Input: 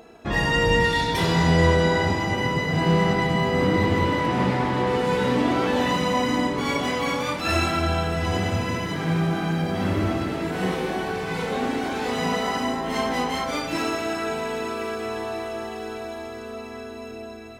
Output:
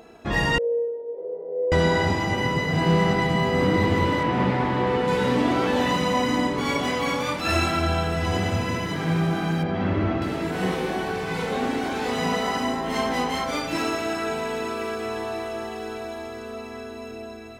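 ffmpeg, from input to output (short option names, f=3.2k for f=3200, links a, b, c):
-filter_complex "[0:a]asettb=1/sr,asplit=3[a][b][c];[a]atrim=end=0.584[d];[b]atrim=start=0.58:end=1.72,asetpts=PTS-STARTPTS,afade=t=in:d=0.004:c=qsin,afade=t=out:st=1.136:d=0.004:c=qsin,asuperpass=centerf=480:order=4:qfactor=4.2[e];[c]atrim=start=1.716[f];[d][e]acrossfade=d=0.004:c1=hsin:c2=qsin[g];[g][f]acrossfade=d=0.004:c1=qsin:c2=hsin,asettb=1/sr,asplit=3[h][i][j];[h]atrim=end=4.234[k];[i]atrim=start=4.23:end=5.08,asetpts=PTS-STARTPTS,afade=t=in:d=0.004:c=qsin,afade=t=out:st=0.846:d=0.004:c=qsin,acrossover=split=4100[l][m];[m]acompressor=threshold=-55dB:ratio=4:attack=1:release=60[n];[l][n]amix=inputs=2:normalize=0[o];[j]atrim=start=5.076[p];[k][o]acrossfade=d=0.004:c1=hsin:c2=qsin[q];[q][p]acrossfade=d=0.004:c1=qsin:c2=hsin,asettb=1/sr,asplit=3[r][s][t];[r]atrim=end=9.634[u];[s]atrim=start=9.63:end=10.22,asetpts=PTS-STARTPTS,afade=t=in:d=0.004:c=qsin,afade=t=out:st=0.586:d=0.004:c=qsin,lowpass=2.9k[v];[t]atrim=start=10.216[w];[u][v]acrossfade=d=0.004:c1=hsin:c2=qsin[x];[x][w]acrossfade=d=0.004:c1=qsin:c2=hsin"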